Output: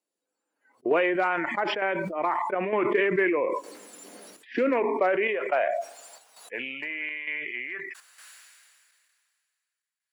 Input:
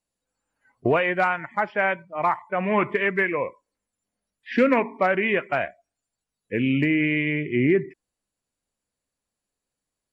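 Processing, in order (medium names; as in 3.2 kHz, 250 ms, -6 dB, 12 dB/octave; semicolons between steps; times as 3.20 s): square tremolo 1.1 Hz, depth 60%, duty 80%; compression 3:1, threshold -22 dBFS, peak gain reduction 7 dB; high-pass sweep 340 Hz -> 1.7 kHz, 4.54–8.46 s; decay stretcher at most 26 dB/s; trim -3.5 dB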